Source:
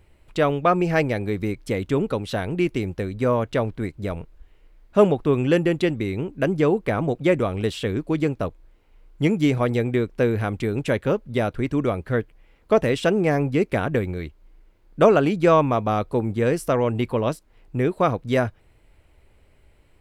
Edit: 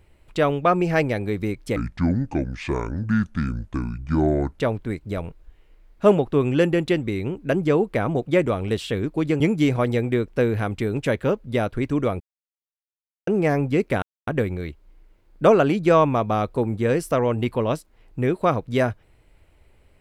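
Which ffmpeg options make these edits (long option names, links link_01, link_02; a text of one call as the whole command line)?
ffmpeg -i in.wav -filter_complex "[0:a]asplit=7[link_01][link_02][link_03][link_04][link_05][link_06][link_07];[link_01]atrim=end=1.764[link_08];[link_02]atrim=start=1.76:end=3.51,asetpts=PTS-STARTPTS,asetrate=27342,aresample=44100[link_09];[link_03]atrim=start=3.506:end=8.332[link_10];[link_04]atrim=start=9.218:end=12.02,asetpts=PTS-STARTPTS,afade=type=out:start_time=2.798:duration=0.004:curve=hsin[link_11];[link_05]atrim=start=12.02:end=13.09,asetpts=PTS-STARTPTS,volume=0[link_12];[link_06]atrim=start=13.09:end=13.84,asetpts=PTS-STARTPTS,afade=type=in:duration=0.004:curve=hsin,afade=type=out:start_time=0.746:duration=0.004:curve=hsin,apad=pad_dur=0.25[link_13];[link_07]atrim=start=13.84,asetpts=PTS-STARTPTS,afade=type=in:duration=0.004:curve=hsin[link_14];[link_08][link_09]acrossfade=duration=0.004:curve1=hsin:curve2=hsin[link_15];[link_15][link_10]acrossfade=duration=0.004:curve1=hsin:curve2=hsin[link_16];[link_11][link_12][link_13][link_14]concat=n=4:v=0:a=1[link_17];[link_16][link_17]acrossfade=duration=0.004:curve1=hsin:curve2=hsin" out.wav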